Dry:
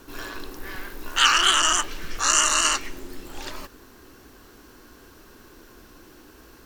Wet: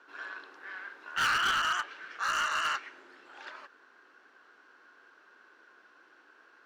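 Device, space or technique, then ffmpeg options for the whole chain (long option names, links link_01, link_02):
megaphone: -af "highpass=580,lowpass=3100,equalizer=frequency=1500:width_type=o:width=0.45:gain=9.5,asoftclip=type=hard:threshold=-15dB,volume=-9dB"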